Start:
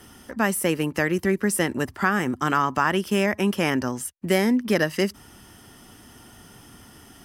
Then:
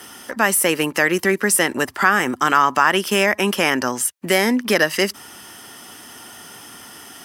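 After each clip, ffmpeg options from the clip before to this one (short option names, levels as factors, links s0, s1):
-filter_complex "[0:a]highpass=f=690:p=1,asplit=2[s0][s1];[s1]alimiter=limit=0.106:level=0:latency=1:release=93,volume=1.12[s2];[s0][s2]amix=inputs=2:normalize=0,volume=1.78"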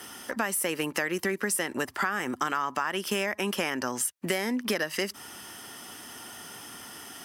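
-af "acompressor=threshold=0.0891:ratio=6,volume=0.631"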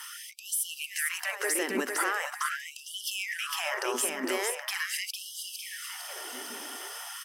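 -filter_complex "[0:a]alimiter=limit=0.0891:level=0:latency=1:release=53,asplit=2[s0][s1];[s1]aecho=0:1:455|910|1365|1820|2275|2730|3185:0.596|0.304|0.155|0.079|0.0403|0.0206|0.0105[s2];[s0][s2]amix=inputs=2:normalize=0,afftfilt=real='re*gte(b*sr/1024,210*pow(2900/210,0.5+0.5*sin(2*PI*0.42*pts/sr)))':imag='im*gte(b*sr/1024,210*pow(2900/210,0.5+0.5*sin(2*PI*0.42*pts/sr)))':win_size=1024:overlap=0.75,volume=1.26"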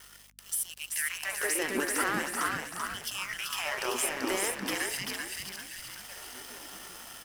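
-filter_complex "[0:a]aeval=exprs='sgn(val(0))*max(abs(val(0))-0.00841,0)':c=same,asplit=2[s0][s1];[s1]asplit=5[s2][s3][s4][s5][s6];[s2]adelay=386,afreqshift=-62,volume=0.631[s7];[s3]adelay=772,afreqshift=-124,volume=0.272[s8];[s4]adelay=1158,afreqshift=-186,volume=0.116[s9];[s5]adelay=1544,afreqshift=-248,volume=0.0501[s10];[s6]adelay=1930,afreqshift=-310,volume=0.0216[s11];[s7][s8][s9][s10][s11]amix=inputs=5:normalize=0[s12];[s0][s12]amix=inputs=2:normalize=0,aeval=exprs='val(0)+0.000562*(sin(2*PI*50*n/s)+sin(2*PI*2*50*n/s)/2+sin(2*PI*3*50*n/s)/3+sin(2*PI*4*50*n/s)/4+sin(2*PI*5*50*n/s)/5)':c=same"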